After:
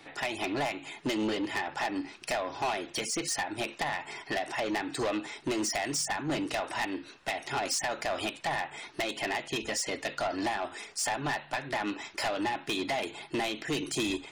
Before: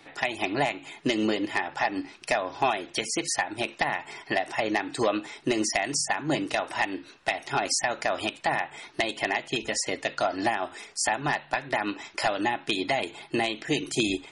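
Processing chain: soft clip -26 dBFS, distortion -9 dB

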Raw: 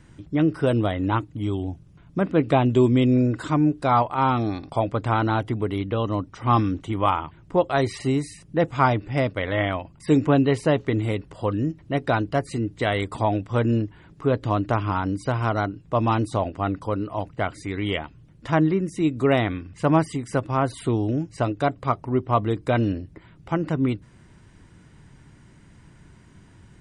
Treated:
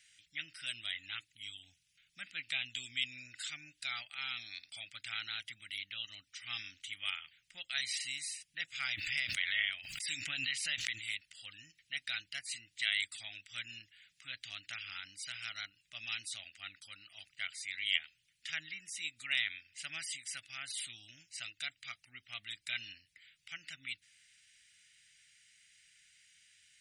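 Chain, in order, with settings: inverse Chebyshev high-pass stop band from 1100 Hz, stop band 40 dB; 8.8–11.09 backwards sustainer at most 46 dB/s; gain +1 dB

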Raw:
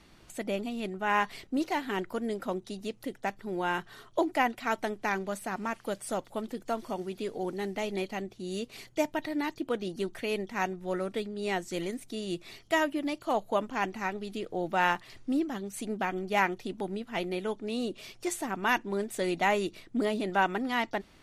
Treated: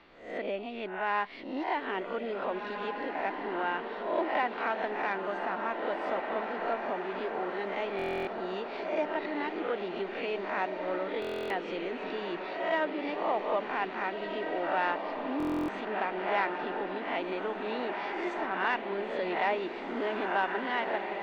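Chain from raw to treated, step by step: spectral swells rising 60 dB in 0.51 s; in parallel at +3 dB: compressor, threshold -34 dBFS, peak gain reduction 14 dB; on the sum: air absorption 210 m; on a send: diffused feedback echo 1.781 s, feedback 51%, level -5.5 dB; on the sum: soft clip -13.5 dBFS, distortion -23 dB; three-band isolator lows -15 dB, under 320 Hz, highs -17 dB, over 4500 Hz; stuck buffer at 7.97/11.2/15.38, samples 1024, times 12; gain -4 dB

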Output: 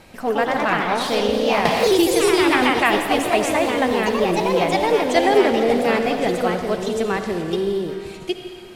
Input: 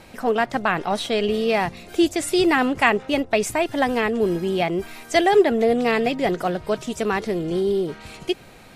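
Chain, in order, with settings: echoes that change speed 0.141 s, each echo +2 st, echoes 3; reverb RT60 2.0 s, pre-delay 54 ms, DRR 6.5 dB; 1.65–2.7 three-band squash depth 100%; gain -1 dB

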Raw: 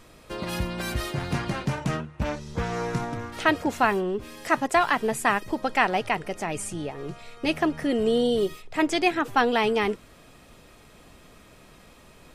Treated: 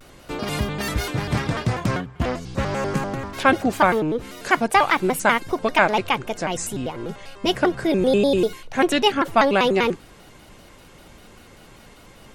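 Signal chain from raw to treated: shaped vibrato square 5.1 Hz, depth 250 cents; gain +4.5 dB

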